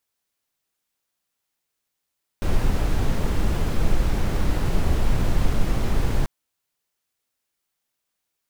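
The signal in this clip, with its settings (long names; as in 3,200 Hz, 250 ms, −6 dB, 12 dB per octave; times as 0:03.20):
noise brown, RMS −18.5 dBFS 3.84 s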